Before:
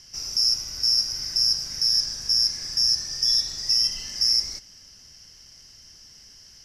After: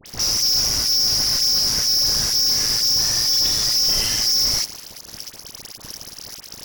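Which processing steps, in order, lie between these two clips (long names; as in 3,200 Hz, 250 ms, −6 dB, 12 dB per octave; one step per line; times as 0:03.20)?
amplitude modulation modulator 110 Hz, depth 65%
fuzz pedal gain 48 dB, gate −46 dBFS
all-pass dispersion highs, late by 62 ms, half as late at 1,500 Hz
level −3.5 dB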